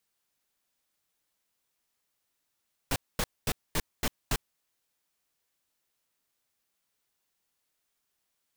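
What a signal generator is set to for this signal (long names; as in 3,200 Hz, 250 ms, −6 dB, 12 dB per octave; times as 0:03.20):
noise bursts pink, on 0.05 s, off 0.23 s, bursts 6, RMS −27.5 dBFS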